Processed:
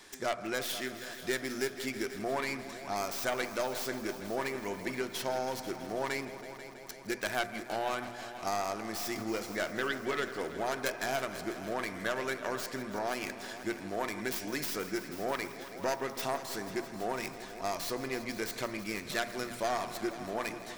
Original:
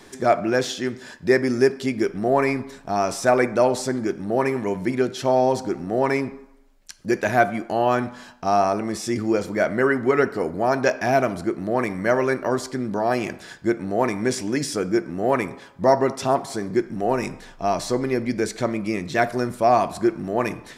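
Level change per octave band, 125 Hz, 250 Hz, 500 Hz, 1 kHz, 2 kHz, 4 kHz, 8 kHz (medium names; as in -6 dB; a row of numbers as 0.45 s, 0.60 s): -16.5 dB, -15.0 dB, -15.0 dB, -13.0 dB, -8.5 dB, -4.0 dB, -6.0 dB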